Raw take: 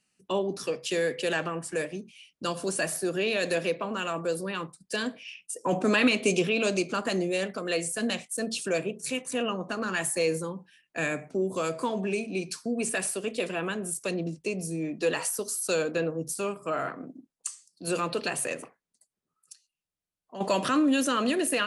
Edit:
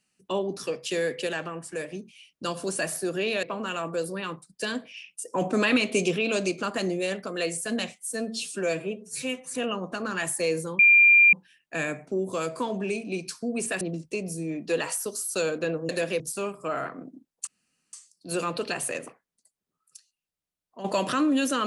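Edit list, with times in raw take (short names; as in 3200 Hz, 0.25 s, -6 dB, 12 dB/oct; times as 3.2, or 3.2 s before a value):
1.27–1.88 gain -3 dB
3.43–3.74 move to 16.22
8.24–9.32 stretch 1.5×
10.56 add tone 2390 Hz -12.5 dBFS 0.54 s
13.04–14.14 cut
17.49 insert room tone 0.46 s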